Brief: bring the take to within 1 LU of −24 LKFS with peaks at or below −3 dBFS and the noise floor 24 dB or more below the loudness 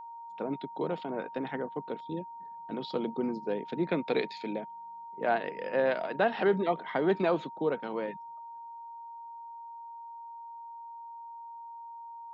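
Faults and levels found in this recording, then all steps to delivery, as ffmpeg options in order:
interfering tone 930 Hz; level of the tone −42 dBFS; integrated loudness −32.0 LKFS; sample peak −15.0 dBFS; target loudness −24.0 LKFS
→ -af "bandreject=frequency=930:width=30"
-af "volume=8dB"

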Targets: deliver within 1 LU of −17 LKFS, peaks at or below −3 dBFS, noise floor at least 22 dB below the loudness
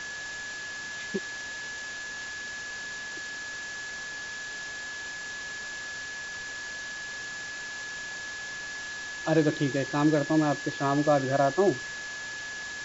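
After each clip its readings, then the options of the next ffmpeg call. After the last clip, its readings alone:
interfering tone 1,700 Hz; level of the tone −36 dBFS; background noise floor −38 dBFS; target noise floor −53 dBFS; integrated loudness −31.0 LKFS; sample peak −11.0 dBFS; target loudness −17.0 LKFS
→ -af "bandreject=frequency=1700:width=30"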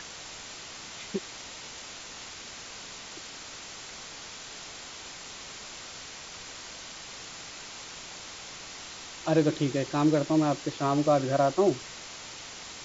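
interfering tone none found; background noise floor −44 dBFS; target noise floor −54 dBFS
→ -af "afftdn=noise_reduction=10:noise_floor=-44"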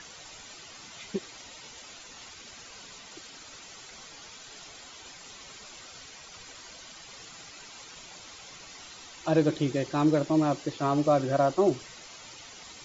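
background noise floor −48 dBFS; target noise floor −49 dBFS
→ -af "afftdn=noise_reduction=6:noise_floor=-48"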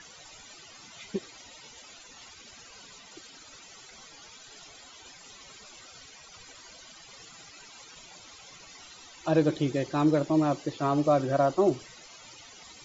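background noise floor −51 dBFS; integrated loudness −27.0 LKFS; sample peak −11.0 dBFS; target loudness −17.0 LKFS
→ -af "volume=10dB,alimiter=limit=-3dB:level=0:latency=1"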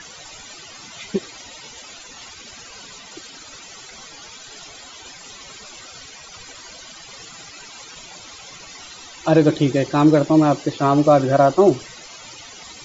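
integrated loudness −17.0 LKFS; sample peak −3.0 dBFS; background noise floor −41 dBFS

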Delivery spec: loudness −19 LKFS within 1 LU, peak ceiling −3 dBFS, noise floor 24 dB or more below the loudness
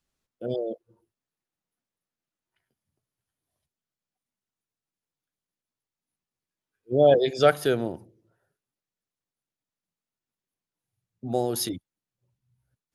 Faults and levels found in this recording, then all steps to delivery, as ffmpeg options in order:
integrated loudness −24.5 LKFS; sample peak −7.0 dBFS; target loudness −19.0 LKFS
→ -af "volume=5.5dB,alimiter=limit=-3dB:level=0:latency=1"

